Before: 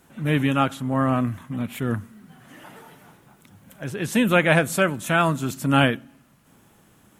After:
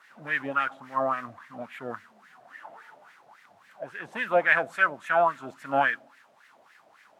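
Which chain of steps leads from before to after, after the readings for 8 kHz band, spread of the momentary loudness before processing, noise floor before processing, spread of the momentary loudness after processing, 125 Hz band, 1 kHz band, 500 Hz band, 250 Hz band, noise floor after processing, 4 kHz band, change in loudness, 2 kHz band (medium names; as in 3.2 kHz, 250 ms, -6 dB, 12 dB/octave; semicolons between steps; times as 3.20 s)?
under -20 dB, 12 LU, -57 dBFS, 20 LU, -24.0 dB, -1.5 dB, -4.0 dB, -18.0 dB, -60 dBFS, -13.0 dB, -4.5 dB, -0.5 dB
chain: modulation noise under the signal 22 dB; word length cut 8-bit, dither triangular; wah-wah 3.6 Hz 630–1900 Hz, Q 5.1; trim +6.5 dB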